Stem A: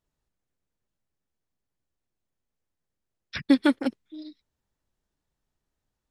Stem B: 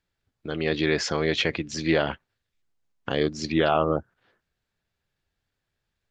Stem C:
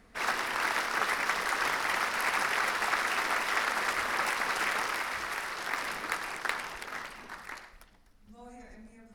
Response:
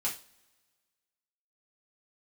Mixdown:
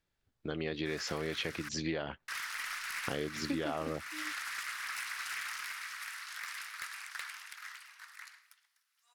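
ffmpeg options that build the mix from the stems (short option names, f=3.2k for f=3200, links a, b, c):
-filter_complex "[0:a]volume=-8dB[a];[1:a]volume=-3dB[b];[2:a]highpass=f=1.3k:w=0.5412,highpass=f=1.3k:w=1.3066,highshelf=f=4.2k:g=6,asoftclip=type=tanh:threshold=-23.5dB,adelay=700,volume=-7dB,asplit=3[c][d][e];[c]atrim=end=1.69,asetpts=PTS-STARTPTS,afade=t=out:st=1.686:d=0.004:c=hsin[f];[d]atrim=start=1.69:end=2.28,asetpts=PTS-STARTPTS,volume=0[g];[e]atrim=start=2.28,asetpts=PTS-STARTPTS,afade=t=in:d=0.004:c=hsin[h];[f][g][h]concat=n=3:v=0:a=1[i];[a][b][i]amix=inputs=3:normalize=0,acompressor=threshold=-33dB:ratio=5"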